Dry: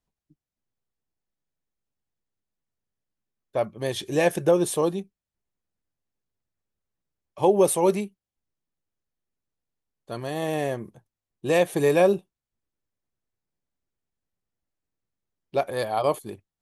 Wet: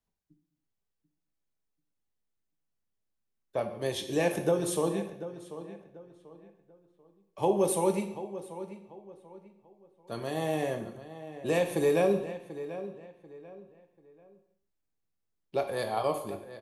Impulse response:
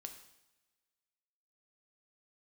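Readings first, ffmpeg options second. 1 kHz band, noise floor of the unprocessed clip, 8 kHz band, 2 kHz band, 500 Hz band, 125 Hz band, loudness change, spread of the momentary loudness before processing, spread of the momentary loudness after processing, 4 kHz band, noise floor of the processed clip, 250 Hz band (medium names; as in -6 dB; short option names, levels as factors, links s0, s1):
-5.5 dB, under -85 dBFS, -5.0 dB, -6.0 dB, -5.5 dB, -4.5 dB, -7.0 dB, 16 LU, 22 LU, -4.5 dB, -82 dBFS, -4.5 dB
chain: -filter_complex "[0:a]acrossover=split=170[s0][s1];[s1]acompressor=threshold=0.0501:ratio=1.5[s2];[s0][s2]amix=inputs=2:normalize=0,asplit=2[s3][s4];[s4]adelay=739,lowpass=f=2900:p=1,volume=0.224,asplit=2[s5][s6];[s6]adelay=739,lowpass=f=2900:p=1,volume=0.32,asplit=2[s7][s8];[s8]adelay=739,lowpass=f=2900:p=1,volume=0.32[s9];[s3][s5][s7][s9]amix=inputs=4:normalize=0[s10];[1:a]atrim=start_sample=2205,afade=t=out:st=0.39:d=0.01,atrim=end_sample=17640[s11];[s10][s11]afir=irnorm=-1:irlink=0,volume=1.26"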